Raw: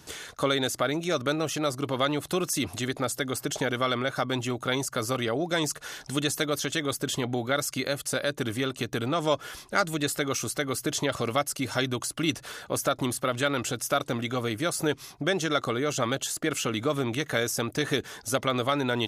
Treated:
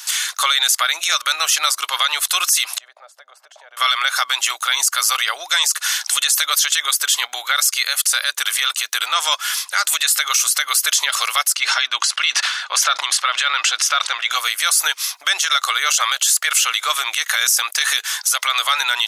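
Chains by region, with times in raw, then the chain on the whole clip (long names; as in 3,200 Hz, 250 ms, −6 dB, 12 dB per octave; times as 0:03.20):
0:02.78–0:03.77: downward compressor 12 to 1, threshold −31 dBFS + resonant band-pass 600 Hz, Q 4.1
0:11.55–0:14.31: low-pass filter 4,200 Hz + level that may fall only so fast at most 76 dB per second
whole clip: high-pass filter 1,000 Hz 24 dB per octave; high-shelf EQ 2,100 Hz +11.5 dB; boost into a limiter +16.5 dB; level −4.5 dB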